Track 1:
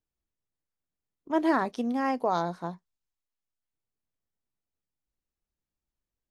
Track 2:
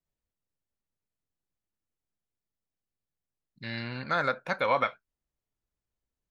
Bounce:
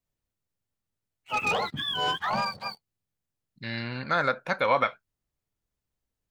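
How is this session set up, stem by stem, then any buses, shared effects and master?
−3.5 dB, 0.00 s, no send, frequency axis turned over on the octave scale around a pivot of 900 Hz; leveller curve on the samples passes 2
+2.5 dB, 0.00 s, no send, no processing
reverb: not used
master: no processing

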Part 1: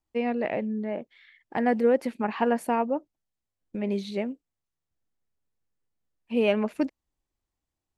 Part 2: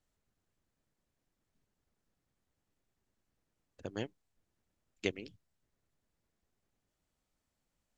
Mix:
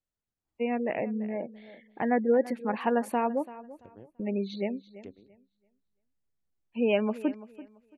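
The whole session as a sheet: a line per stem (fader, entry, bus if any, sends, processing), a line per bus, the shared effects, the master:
−2.0 dB, 0.45 s, no send, echo send −17 dB, gate on every frequency bin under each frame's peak −30 dB strong
−11.0 dB, 0.00 s, no send, no echo send, treble cut that deepens with the level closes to 890 Hz, closed at −42 dBFS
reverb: not used
echo: repeating echo 337 ms, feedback 23%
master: no processing

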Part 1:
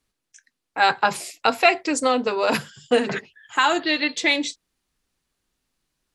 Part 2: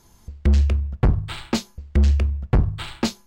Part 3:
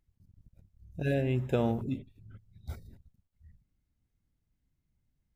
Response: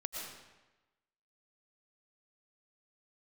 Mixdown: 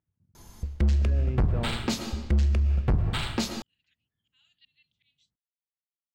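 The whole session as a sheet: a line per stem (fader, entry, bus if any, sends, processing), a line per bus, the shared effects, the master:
−19.0 dB, 0.75 s, no send, first difference; volume swells 377 ms; resonant band-pass 3,000 Hz, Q 4.6
+2.0 dB, 0.35 s, send −10 dB, no processing
−3.5 dB, 0.00 s, no send, Chebyshev band-pass filter 110–1,600 Hz, order 2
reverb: on, RT60 1.1 s, pre-delay 75 ms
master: brickwall limiter −18.5 dBFS, peak gain reduction 11 dB

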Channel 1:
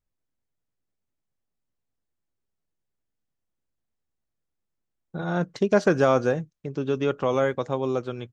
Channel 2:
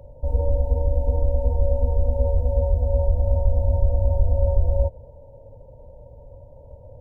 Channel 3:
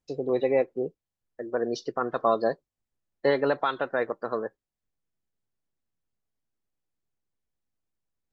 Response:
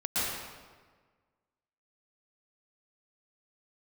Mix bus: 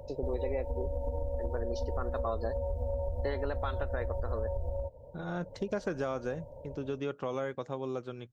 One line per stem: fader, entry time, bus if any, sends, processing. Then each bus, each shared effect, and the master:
−9.0 dB, 0.00 s, no send, no processing
+2.0 dB, 0.00 s, no send, automatic gain control gain up to 10.5 dB; low-shelf EQ 170 Hz −8.5 dB; downward compressor 4 to 1, threshold −29 dBFS, peak gain reduction 13 dB; automatic ducking −11 dB, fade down 0.50 s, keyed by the first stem
−4.5 dB, 0.00 s, no send, no processing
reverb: not used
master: downward compressor 4 to 1, threshold −30 dBFS, peak gain reduction 9 dB

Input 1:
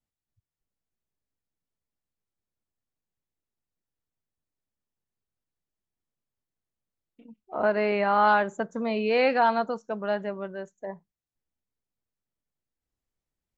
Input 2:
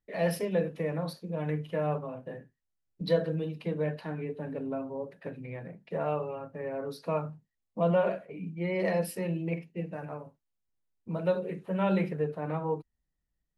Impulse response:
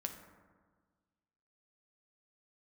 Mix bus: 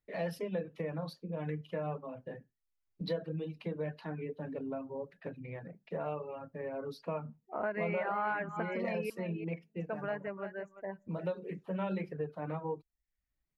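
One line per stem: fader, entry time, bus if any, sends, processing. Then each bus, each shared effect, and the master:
−6.5 dB, 0.00 s, muted 0:09.10–0:09.80, send −13.5 dB, echo send −11.5 dB, high shelf with overshoot 2,900 Hz −8 dB, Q 3
−2.5 dB, 0.00 s, no send, no echo send, parametric band 9,700 Hz −9.5 dB 0.82 octaves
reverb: on, RT60 1.5 s, pre-delay 5 ms
echo: single-tap delay 343 ms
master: reverb reduction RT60 0.53 s; downward compressor 2.5 to 1, threshold −34 dBFS, peak gain reduction 8.5 dB

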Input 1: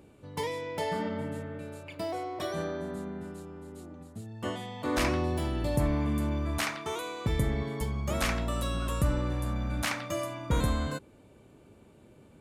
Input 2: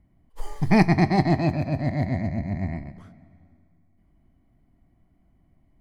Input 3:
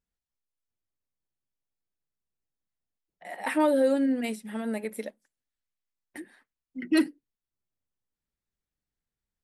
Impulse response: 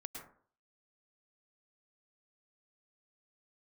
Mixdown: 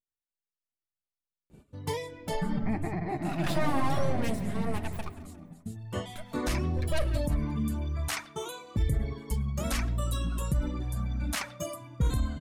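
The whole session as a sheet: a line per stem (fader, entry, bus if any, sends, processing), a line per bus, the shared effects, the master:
+1.5 dB, 1.50 s, bus A, send −19.5 dB, no echo send, reverb reduction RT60 1.9 s; bass and treble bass +10 dB, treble +5 dB
+0.5 dB, 1.95 s, no bus, no send, echo send −3 dB, low-pass filter 2,100 Hz 12 dB per octave; downward compressor 6 to 1, threshold −27 dBFS, peak gain reduction 14.5 dB
+2.5 dB, 0.00 s, bus A, send −14.5 dB, echo send −15 dB, full-wave rectification
bus A: 0.0 dB, brickwall limiter −17 dBFS, peak gain reduction 10 dB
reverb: on, RT60 0.50 s, pre-delay 97 ms
echo: repeating echo 176 ms, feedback 40%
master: noise gate −49 dBFS, range −11 dB; flanger 1 Hz, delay 1.5 ms, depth 4.3 ms, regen −38%

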